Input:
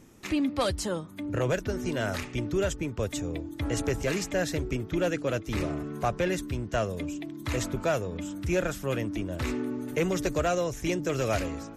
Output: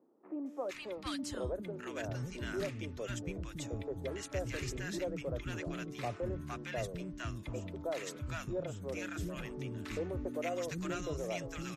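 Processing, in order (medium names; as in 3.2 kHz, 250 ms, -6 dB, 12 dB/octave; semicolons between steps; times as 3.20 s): treble shelf 10 kHz -6.5 dB; three bands offset in time mids, highs, lows 460/740 ms, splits 280/960 Hz; trim -8 dB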